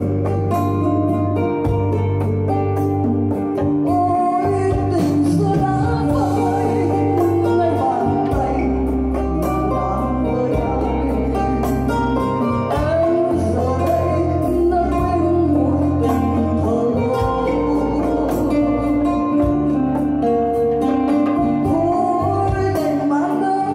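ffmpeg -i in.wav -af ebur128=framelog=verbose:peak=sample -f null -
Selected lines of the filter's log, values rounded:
Integrated loudness:
  I:         -18.0 LUFS
  Threshold: -28.0 LUFS
Loudness range:
  LRA:         1.8 LU
  Threshold: -37.9 LUFS
  LRA low:   -19.1 LUFS
  LRA high:  -17.3 LUFS
Sample peak:
  Peak:       -5.7 dBFS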